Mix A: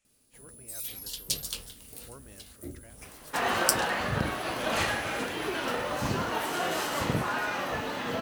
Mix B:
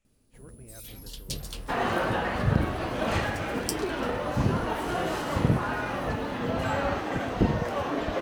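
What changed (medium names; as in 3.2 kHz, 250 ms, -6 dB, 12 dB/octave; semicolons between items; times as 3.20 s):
second sound: entry -1.65 s; master: add tilt EQ -2.5 dB/octave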